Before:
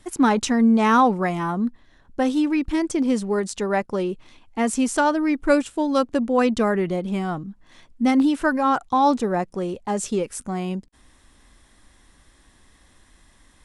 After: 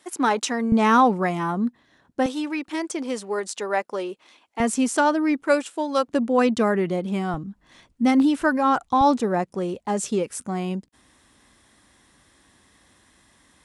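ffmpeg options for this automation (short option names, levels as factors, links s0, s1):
-af "asetnsamples=n=441:p=0,asendcmd='0.72 highpass f 130;2.26 highpass f 440;4.6 highpass f 150;5.43 highpass f 400;6.08 highpass f 120;7.34 highpass f 42;9.01 highpass f 96',highpass=370"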